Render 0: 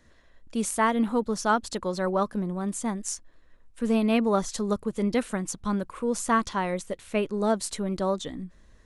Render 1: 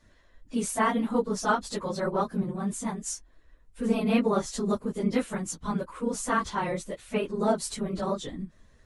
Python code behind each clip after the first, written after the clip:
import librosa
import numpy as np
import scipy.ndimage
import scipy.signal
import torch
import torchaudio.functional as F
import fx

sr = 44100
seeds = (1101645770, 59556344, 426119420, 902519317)

y = fx.phase_scramble(x, sr, seeds[0], window_ms=50)
y = y * 10.0 ** (-1.5 / 20.0)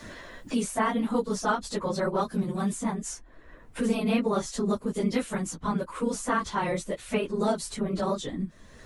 y = fx.band_squash(x, sr, depth_pct=70)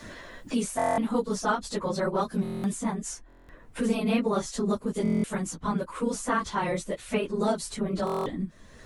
y = fx.buffer_glitch(x, sr, at_s=(0.77, 2.43, 3.28, 5.03, 8.05), block=1024, repeats=8)